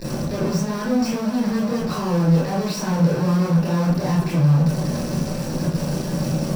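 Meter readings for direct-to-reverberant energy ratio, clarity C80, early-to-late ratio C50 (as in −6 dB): −7.0 dB, 8.0 dB, 2.0 dB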